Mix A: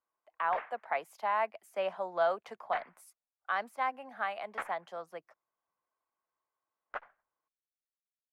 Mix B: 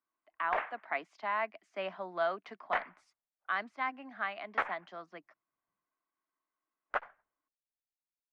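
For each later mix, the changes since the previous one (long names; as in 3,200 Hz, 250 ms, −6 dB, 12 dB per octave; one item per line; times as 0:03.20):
speech: add loudspeaker in its box 170–5,300 Hz, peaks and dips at 190 Hz +5 dB, 290 Hz +9 dB, 510 Hz −10 dB, 840 Hz −7 dB, 2,000 Hz +3 dB
background +6.5 dB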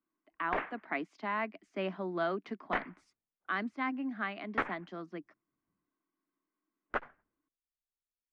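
master: add low shelf with overshoot 450 Hz +11 dB, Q 1.5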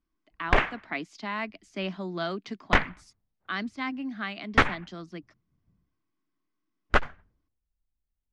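background +10.0 dB
master: remove three-way crossover with the lows and the highs turned down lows −16 dB, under 210 Hz, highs −17 dB, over 2,300 Hz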